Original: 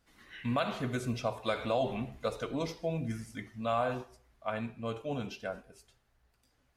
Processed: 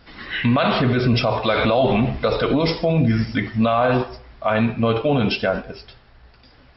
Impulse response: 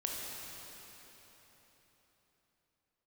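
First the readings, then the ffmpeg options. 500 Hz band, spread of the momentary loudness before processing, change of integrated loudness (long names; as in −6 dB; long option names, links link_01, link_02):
+14.5 dB, 10 LU, +16.0 dB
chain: -af "alimiter=level_in=31dB:limit=-1dB:release=50:level=0:latency=1,volume=-8.5dB" -ar 44100 -c:a mp2 -b:a 48k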